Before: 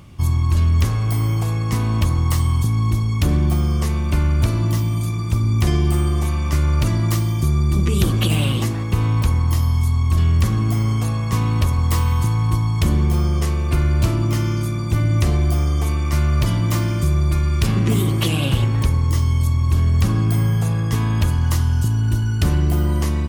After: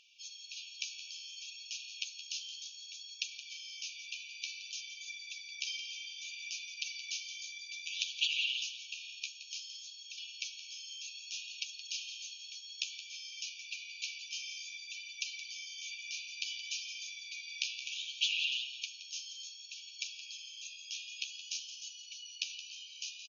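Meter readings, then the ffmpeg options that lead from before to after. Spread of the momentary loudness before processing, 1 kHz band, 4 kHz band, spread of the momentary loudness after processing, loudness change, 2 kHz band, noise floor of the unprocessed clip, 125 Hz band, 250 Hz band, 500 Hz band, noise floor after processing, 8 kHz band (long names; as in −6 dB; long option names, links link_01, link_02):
3 LU, below −40 dB, −4.0 dB, 10 LU, −20.5 dB, −9.0 dB, −21 dBFS, below −40 dB, below −40 dB, below −40 dB, −51 dBFS, −9.0 dB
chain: -filter_complex "[0:a]afftfilt=real='re*between(b*sr/4096,2300,6800)':imag='im*between(b*sr/4096,2300,6800)':win_size=4096:overlap=0.75,asplit=5[link_01][link_02][link_03][link_04][link_05];[link_02]adelay=171,afreqshift=68,volume=-12dB[link_06];[link_03]adelay=342,afreqshift=136,volume=-20.4dB[link_07];[link_04]adelay=513,afreqshift=204,volume=-28.8dB[link_08];[link_05]adelay=684,afreqshift=272,volume=-37.2dB[link_09];[link_01][link_06][link_07][link_08][link_09]amix=inputs=5:normalize=0,flanger=delay=6.1:depth=8.9:regen=23:speed=0.59:shape=sinusoidal,volume=-1dB"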